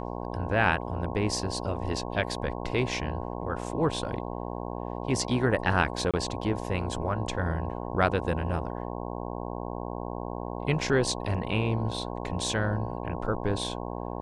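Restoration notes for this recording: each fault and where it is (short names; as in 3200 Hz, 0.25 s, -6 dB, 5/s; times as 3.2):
buzz 60 Hz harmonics 18 -35 dBFS
6.11–6.14 gap 26 ms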